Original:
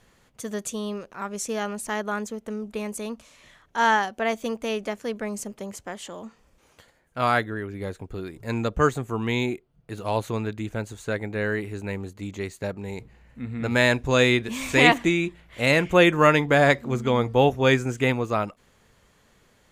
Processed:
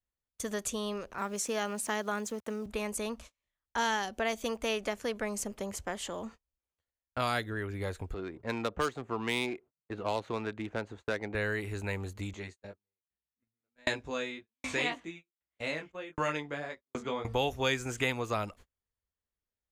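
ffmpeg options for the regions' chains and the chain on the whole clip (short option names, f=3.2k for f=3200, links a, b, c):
-filter_complex "[0:a]asettb=1/sr,asplit=3[a][b][c];[a]atrim=end=1.184[d];[b]atrim=start=1.18:end=2.66,asetpts=PTS-STARTPTS,afade=t=in:d=0.004:c=qsin,afade=t=out:st=1.476:d=0.004:c=qsin,highpass=f=140:w=0.5412,highpass=f=140:w=1.3066,aeval=exprs='val(0)*gte(abs(val(0)),0.00299)':c=same[e];[c]atrim=start=2.656[f];[d][e]acrossfade=d=0.004:c1=hsin:c2=qsin[g];[g][f]acrossfade=d=0.004:c1=qsin:c2=hsin,asettb=1/sr,asplit=3[h][i][j];[h]atrim=end=8.144[k];[i]atrim=start=8.14:end=11.35,asetpts=PTS-STARTPTS,afade=t=in:d=0.004:c=qsin,afade=t=out:st=3.206:d=0.004:c=qsin,highpass=180,adynamicsmooth=sensitivity=3.5:basefreq=1.9k,asoftclip=type=hard:threshold=-9.5dB[l];[j]atrim=start=11.346[m];[k][l]acrossfade=d=0.004:c1=hsin:c2=qsin[n];[n][m]acrossfade=d=0.004:c1=qsin:c2=hsin,asettb=1/sr,asplit=3[o][p][q];[o]atrim=end=12.334[r];[p]atrim=start=12.33:end=17.25,asetpts=PTS-STARTPTS,afade=t=in:d=0.004:c=qsin,afade=t=out:st=4.916:d=0.004:c=qsin,flanger=delay=18.5:depth=2.3:speed=1.8,highpass=150,lowpass=7.4k,aeval=exprs='val(0)*pow(10,-29*if(lt(mod(1.3*n/s,1),2*abs(1.3)/1000),1-mod(1.3*n/s,1)/(2*abs(1.3)/1000),(mod(1.3*n/s,1)-2*abs(1.3)/1000)/(1-2*abs(1.3)/1000))/20)':c=same[s];[q]atrim=start=17.246[t];[r][s]acrossfade=d=0.004:c1=hsin:c2=qsin[u];[u][t]acrossfade=d=0.004:c1=qsin:c2=hsin,agate=range=-38dB:threshold=-46dB:ratio=16:detection=peak,lowshelf=f=100:t=q:w=1.5:g=8,acrossover=split=560|2900[v][w][x];[v]acompressor=threshold=-36dB:ratio=4[y];[w]acompressor=threshold=-33dB:ratio=4[z];[x]acompressor=threshold=-32dB:ratio=4[aa];[y][z][aa]amix=inputs=3:normalize=0"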